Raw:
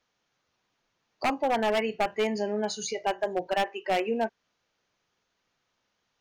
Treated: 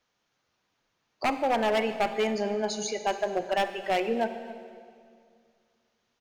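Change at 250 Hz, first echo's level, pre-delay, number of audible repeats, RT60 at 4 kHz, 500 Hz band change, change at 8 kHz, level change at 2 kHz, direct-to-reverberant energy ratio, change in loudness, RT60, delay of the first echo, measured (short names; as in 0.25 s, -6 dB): +0.5 dB, -20.0 dB, 35 ms, 1, 1.9 s, +0.5 dB, +0.5 dB, +0.5 dB, 9.5 dB, +0.5 dB, 2.2 s, 0.267 s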